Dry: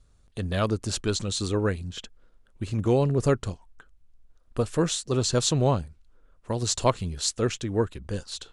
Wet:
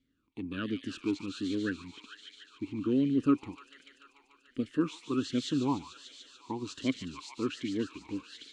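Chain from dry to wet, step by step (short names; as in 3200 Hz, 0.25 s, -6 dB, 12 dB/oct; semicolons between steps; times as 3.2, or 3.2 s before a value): on a send: thin delay 0.146 s, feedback 82%, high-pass 1900 Hz, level -6 dB; on the sum: vowel sweep i-u 1.3 Hz; gain +6.5 dB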